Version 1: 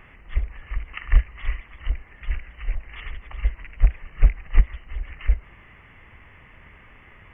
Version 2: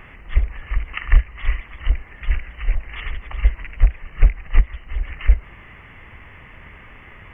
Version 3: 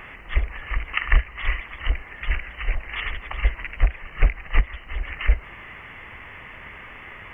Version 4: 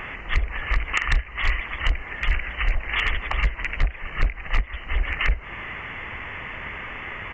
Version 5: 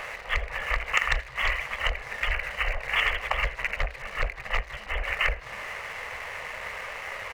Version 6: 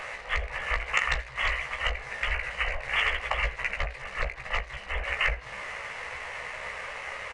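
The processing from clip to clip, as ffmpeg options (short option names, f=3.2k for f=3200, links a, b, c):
-af "alimiter=limit=-8.5dB:level=0:latency=1:release=416,volume=6.5dB"
-af "lowshelf=f=280:g=-9.5,volume=4.5dB"
-af "acompressor=threshold=-23dB:ratio=4,aresample=16000,volume=19.5dB,asoftclip=hard,volume=-19.5dB,aresample=44100,volume=6.5dB"
-filter_complex "[0:a]aeval=exprs='sgn(val(0))*max(abs(val(0))-0.00668,0)':c=same,lowshelf=f=400:t=q:w=3:g=-8.5,asplit=5[a][b][c][d][e];[b]adelay=80,afreqshift=-80,volume=-22dB[f];[c]adelay=160,afreqshift=-160,volume=-27.7dB[g];[d]adelay=240,afreqshift=-240,volume=-33.4dB[h];[e]adelay=320,afreqshift=-320,volume=-39dB[i];[a][f][g][h][i]amix=inputs=5:normalize=0"
-filter_complex "[0:a]asplit=2[a][b];[b]adelay=16,volume=-6dB[c];[a][c]amix=inputs=2:normalize=0,aresample=22050,aresample=44100,volume=-2dB"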